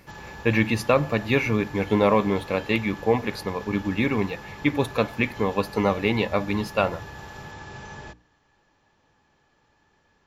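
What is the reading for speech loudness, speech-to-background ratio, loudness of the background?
−24.5 LKFS, 16.0 dB, −40.5 LKFS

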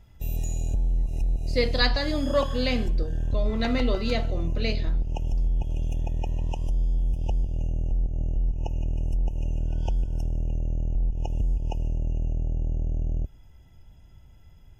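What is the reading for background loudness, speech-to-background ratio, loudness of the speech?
−30.0 LKFS, 2.0 dB, −28.0 LKFS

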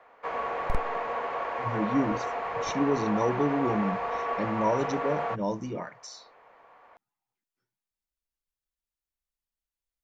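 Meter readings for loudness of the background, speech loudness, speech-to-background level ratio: −32.0 LKFS, −30.5 LKFS, 1.5 dB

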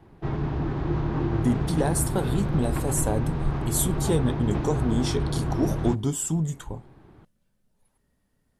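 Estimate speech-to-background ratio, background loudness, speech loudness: 1.0 dB, −28.5 LKFS, −27.5 LKFS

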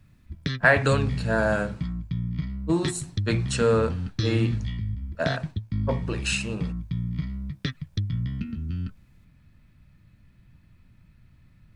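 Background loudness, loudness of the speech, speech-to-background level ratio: −31.5 LKFS, −26.0 LKFS, 5.5 dB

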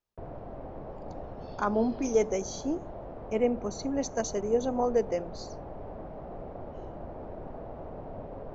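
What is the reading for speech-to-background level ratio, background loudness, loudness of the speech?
12.5 dB, −42.5 LKFS, −30.0 LKFS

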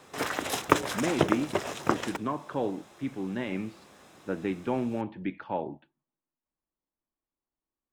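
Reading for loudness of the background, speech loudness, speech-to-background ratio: −30.0 LKFS, −34.0 LKFS, −4.0 dB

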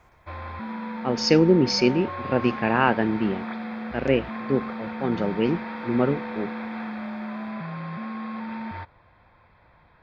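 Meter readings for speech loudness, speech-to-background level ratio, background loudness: −23.5 LKFS, 10.0 dB, −33.5 LKFS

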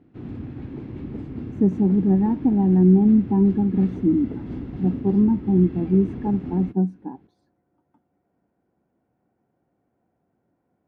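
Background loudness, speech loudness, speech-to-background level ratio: −33.5 LKFS, −20.0 LKFS, 13.5 dB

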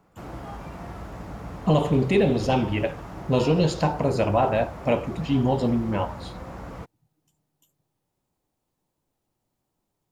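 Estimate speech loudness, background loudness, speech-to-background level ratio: −23.5 LKFS, −38.5 LKFS, 15.0 dB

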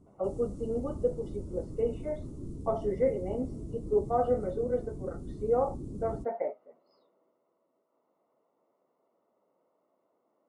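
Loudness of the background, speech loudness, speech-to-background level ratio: −42.5 LKFS, −33.0 LKFS, 9.5 dB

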